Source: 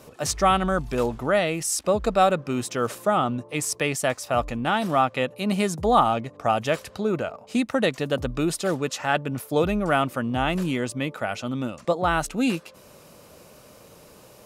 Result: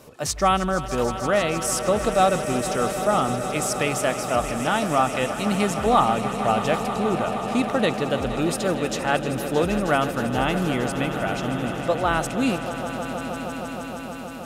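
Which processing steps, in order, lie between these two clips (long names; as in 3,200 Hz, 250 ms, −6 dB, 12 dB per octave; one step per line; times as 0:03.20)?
echo that builds up and dies away 157 ms, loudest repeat 5, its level −13.5 dB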